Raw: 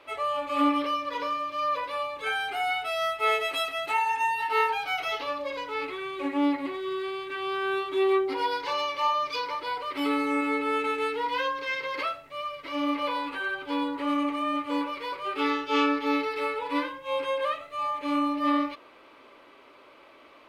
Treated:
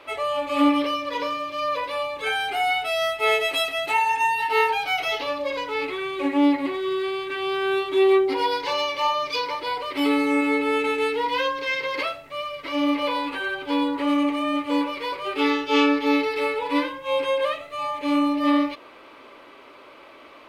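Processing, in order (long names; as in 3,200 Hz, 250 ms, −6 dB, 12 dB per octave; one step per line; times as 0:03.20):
dynamic equaliser 1,300 Hz, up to −7 dB, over −42 dBFS, Q 2.2
level +6.5 dB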